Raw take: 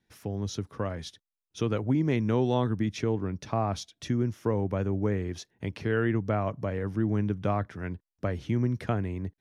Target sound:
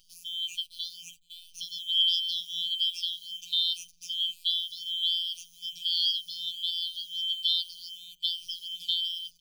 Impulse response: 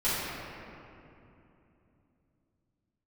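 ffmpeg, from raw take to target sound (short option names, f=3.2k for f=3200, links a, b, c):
-filter_complex "[0:a]afftfilt=real='real(if(lt(b,272),68*(eq(floor(b/68),0)*2+eq(floor(b/68),1)*3+eq(floor(b/68),2)*0+eq(floor(b/68),3)*1)+mod(b,68),b),0)':imag='imag(if(lt(b,272),68*(eq(floor(b/68),0)*2+eq(floor(b/68),1)*3+eq(floor(b/68),2)*0+eq(floor(b/68),3)*1)+mod(b,68),b),0)':win_size=2048:overlap=0.75,highshelf=f=4.1k:g=12,acompressor=mode=upward:threshold=-40dB:ratio=2.5,lowshelf=f=170:g=-7,asplit=2[a][b];[b]adelay=508,lowpass=f=830:p=1,volume=-5dB,asplit=2[c][d];[d]adelay=508,lowpass=f=830:p=1,volume=0.34,asplit=2[e][f];[f]adelay=508,lowpass=f=830:p=1,volume=0.34,asplit=2[g][h];[h]adelay=508,lowpass=f=830:p=1,volume=0.34[i];[a][c][e][g][i]amix=inputs=5:normalize=0,acrusher=bits=8:dc=4:mix=0:aa=0.000001,afftfilt=real='re*(1-between(b*sr/4096,190,2400))':imag='im*(1-between(b*sr/4096,190,2400))':win_size=4096:overlap=0.75,afftfilt=real='hypot(re,im)*cos(PI*b)':imag='0':win_size=1024:overlap=0.75,asplit=2[j][k];[k]adelay=5.5,afreqshift=-1.3[l];[j][l]amix=inputs=2:normalize=1"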